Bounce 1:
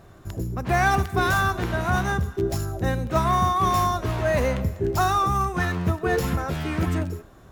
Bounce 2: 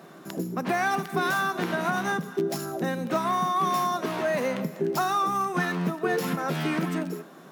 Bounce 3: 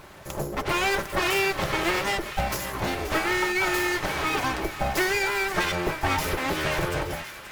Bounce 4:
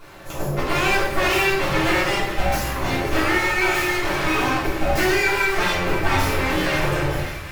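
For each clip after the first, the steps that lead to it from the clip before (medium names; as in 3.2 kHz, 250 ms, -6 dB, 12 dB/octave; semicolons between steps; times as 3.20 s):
compression, threshold -26 dBFS, peak gain reduction 10 dB; Chebyshev high-pass 160 Hz, order 5; peaking EQ 7.1 kHz -3.5 dB 0.22 oct; trim +5 dB
full-wave rectifier; comb of notches 240 Hz; feedback echo behind a high-pass 529 ms, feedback 65%, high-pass 1.4 kHz, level -11 dB; trim +6.5 dB
simulated room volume 210 m³, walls mixed, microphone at 3.2 m; trim -5.5 dB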